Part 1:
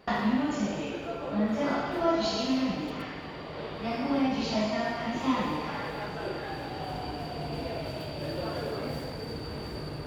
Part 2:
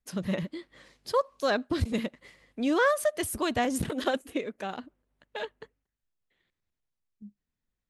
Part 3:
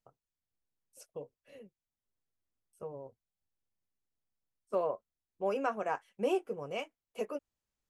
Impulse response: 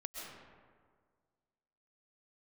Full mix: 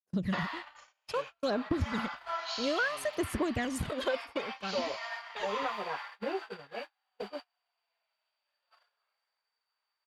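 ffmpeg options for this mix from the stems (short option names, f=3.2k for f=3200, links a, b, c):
-filter_complex "[0:a]highpass=f=970:w=0.5412,highpass=f=970:w=1.3066,adelay=250,volume=-2dB[a];[1:a]agate=range=-18dB:threshold=-53dB:ratio=16:detection=peak,aphaser=in_gain=1:out_gain=1:delay=2:decay=0.66:speed=0.6:type=sinusoidal,volume=-3.5dB[b];[2:a]lowpass=2.7k,asplit=2[c][d];[d]adelay=7.4,afreqshift=-1.4[e];[c][e]amix=inputs=2:normalize=1,volume=0dB[f];[b][f]amix=inputs=2:normalize=0,acompressor=threshold=-27dB:ratio=10,volume=0dB[g];[a][g]amix=inputs=2:normalize=0,agate=range=-37dB:threshold=-39dB:ratio=16:detection=peak,highshelf=f=7.8k:g=-7.5"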